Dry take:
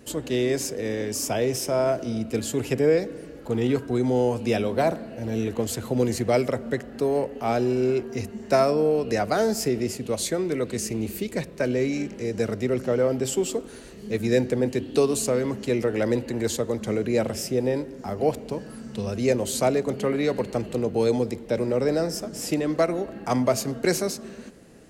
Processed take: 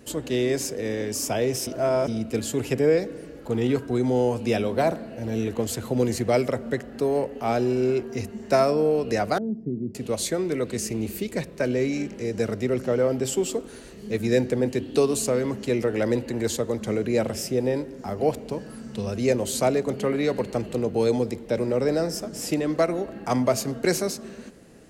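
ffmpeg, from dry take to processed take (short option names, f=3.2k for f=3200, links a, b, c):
-filter_complex "[0:a]asettb=1/sr,asplit=3[a][b][c];[a]atrim=end=9.384[d];[b]atrim=start=9.38:end=9.95,asetpts=PTS-STARTPTS,afade=t=in:d=0.004:c=qsin,afade=t=out:st=0.566:d=0.004:c=qsin,asuperpass=centerf=180:order=4:qfactor=1[e];[c]atrim=start=9.946[f];[d][e]acrossfade=d=0.004:c1=hsin:c2=qsin[g];[g][f]acrossfade=d=0.004:c1=qsin:c2=hsin,asplit=3[h][i][j];[h]atrim=end=1.672[k];[i]atrim=start=1.668:end=2.082,asetpts=PTS-STARTPTS,areverse[l];[j]atrim=start=2.078[m];[k][l]acrossfade=d=0.004:c1=hsin:c2=hsin[n];[n][m]acrossfade=d=0.004:c1=hsin:c2=hsin"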